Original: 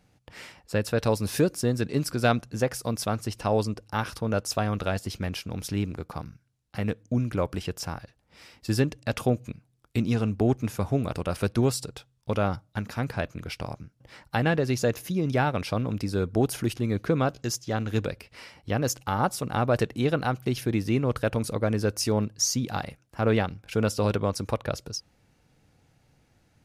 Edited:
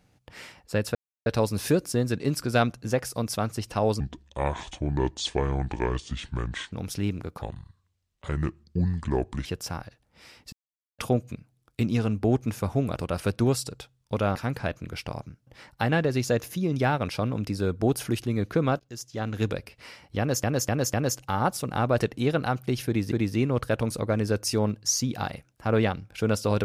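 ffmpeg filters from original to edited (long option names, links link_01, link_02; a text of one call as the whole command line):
ffmpeg -i in.wav -filter_complex "[0:a]asplit=14[link_01][link_02][link_03][link_04][link_05][link_06][link_07][link_08][link_09][link_10][link_11][link_12][link_13][link_14];[link_01]atrim=end=0.95,asetpts=PTS-STARTPTS,afade=type=out:start_time=0.946:duration=0.004:curve=hsin,apad=pad_dur=0.31[link_15];[link_02]atrim=start=0.95:end=3.694,asetpts=PTS-STARTPTS,afade=type=in:duration=0.004:curve=hsin[link_16];[link_03]atrim=start=3.69:end=5.46,asetpts=PTS-STARTPTS,asetrate=28665,aresample=44100[link_17];[link_04]atrim=start=5.456:end=6.154[link_18];[link_05]atrim=start=6.15:end=7.62,asetpts=PTS-STARTPTS,asetrate=31752,aresample=44100[link_19];[link_06]atrim=start=7.616:end=8.69,asetpts=PTS-STARTPTS,afade=type=out:start_time=1.07:duration=0.004:curve=hsin[link_20];[link_07]atrim=start=8.69:end=9.15,asetpts=PTS-STARTPTS,volume=0[link_21];[link_08]atrim=start=9.15:end=12.522,asetpts=PTS-STARTPTS,afade=type=in:duration=0.004:curve=hsin[link_22];[link_09]atrim=start=12.888:end=17.33,asetpts=PTS-STARTPTS,afade=type=out:start_time=4.438:duration=0.004:curve=hsin:silence=0.0891251[link_23];[link_10]atrim=start=17.33:end=18.972,asetpts=PTS-STARTPTS,afade=type=in:duration=0.6:silence=0.0891251[link_24];[link_11]atrim=start=18.718:end=18.972[link_25];[link_12]atrim=start=18.718:end=18.972[link_26];[link_13]atrim=start=18.718:end=20.902[link_27];[link_14]atrim=start=20.648[link_28];[link_15][link_16]concat=n=2:v=0:a=1[link_29];[link_29][link_17]acrossfade=duration=0.004:curve1=hsin:curve2=hsin[link_30];[link_30][link_18]acrossfade=duration=0.004:curve1=hsin:curve2=hsin[link_31];[link_31][link_19]acrossfade=duration=0.004:curve1=hsin:curve2=hsin[link_32];[link_20][link_21][link_22]concat=n=3:v=0:a=1[link_33];[link_32][link_33]acrossfade=duration=0.004:curve1=hsin:curve2=hsin[link_34];[link_23][link_24]concat=n=2:v=0:a=1[link_35];[link_34][link_35]acrossfade=duration=0.004:curve1=hsin:curve2=hsin[link_36];[link_36][link_25]acrossfade=duration=0.004:curve1=hsin:curve2=hsin[link_37];[link_37][link_26]acrossfade=duration=0.004:curve1=hsin:curve2=hsin[link_38];[link_38][link_27]acrossfade=duration=0.004:curve1=hsin:curve2=hsin[link_39];[link_39][link_28]acrossfade=duration=0.004:curve1=hsin:curve2=hsin" out.wav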